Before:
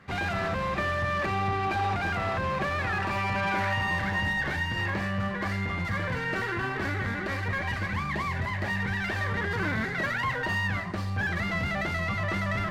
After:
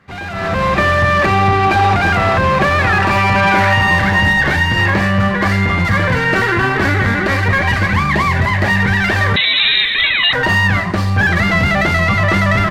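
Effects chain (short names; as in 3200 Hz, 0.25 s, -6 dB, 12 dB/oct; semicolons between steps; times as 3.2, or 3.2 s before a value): 9.36–10.33 inverted band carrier 3900 Hz; speakerphone echo 0.2 s, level -22 dB; AGC gain up to 15 dB; gain +1.5 dB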